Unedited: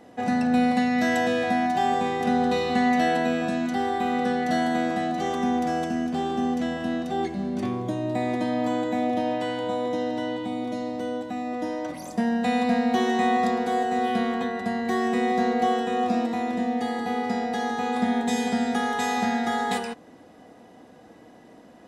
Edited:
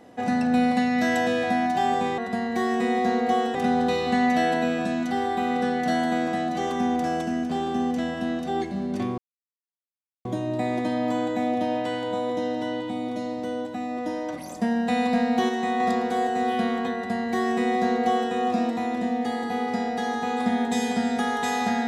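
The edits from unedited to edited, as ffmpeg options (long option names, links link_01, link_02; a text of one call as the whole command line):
ffmpeg -i in.wav -filter_complex "[0:a]asplit=6[link_01][link_02][link_03][link_04][link_05][link_06];[link_01]atrim=end=2.182[link_07];[link_02]atrim=start=14.508:end=15.882[link_08];[link_03]atrim=start=2.178:end=7.81,asetpts=PTS-STARTPTS,afade=type=out:start_time=5.628:duration=0.004:curve=hsin,apad=pad_dur=1.07[link_09];[link_04]atrim=start=7.81:end=13.052,asetpts=PTS-STARTPTS,afade=type=in:duration=0.004:curve=hsin[link_10];[link_05]atrim=start=13.048:end=13.362,asetpts=PTS-STARTPTS,volume=-3.5dB[link_11];[link_06]atrim=start=13.358[link_12];[link_07][link_08]acrossfade=duration=0.004:curve1=hsin:curve2=hsin[link_13];[link_09][link_10]concat=n=2:v=0:a=1[link_14];[link_13][link_14]acrossfade=duration=0.004:curve1=hsin:curve2=hsin[link_15];[link_15][link_11]acrossfade=duration=0.004:curve1=hsin:curve2=hsin[link_16];[link_16][link_12]acrossfade=duration=0.004:curve1=hsin:curve2=hsin" out.wav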